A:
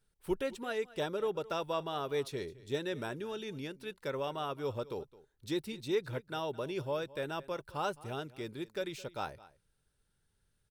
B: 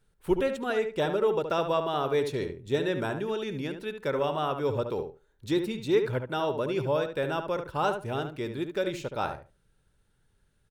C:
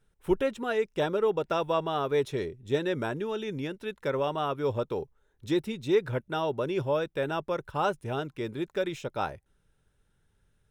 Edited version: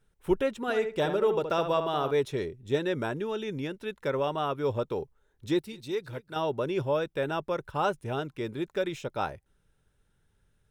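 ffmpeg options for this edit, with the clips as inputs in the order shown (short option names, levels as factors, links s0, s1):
-filter_complex "[2:a]asplit=3[s0][s1][s2];[s0]atrim=end=0.682[s3];[1:a]atrim=start=0.678:end=2.112[s4];[s1]atrim=start=2.108:end=5.592[s5];[0:a]atrim=start=5.588:end=6.362[s6];[s2]atrim=start=6.358[s7];[s3][s4]acrossfade=d=0.004:c1=hsin:c2=hsin[s8];[s8][s5]acrossfade=d=0.004:c1=hsin:c2=hsin[s9];[s9][s6]acrossfade=d=0.004:c1=hsin:c2=hsin[s10];[s10][s7]acrossfade=d=0.004:c1=hsin:c2=hsin"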